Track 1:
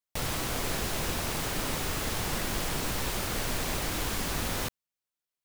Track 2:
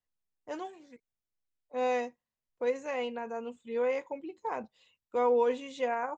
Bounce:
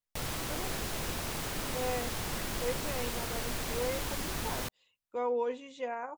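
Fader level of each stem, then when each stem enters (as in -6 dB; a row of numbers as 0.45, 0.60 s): -4.5, -5.5 dB; 0.00, 0.00 s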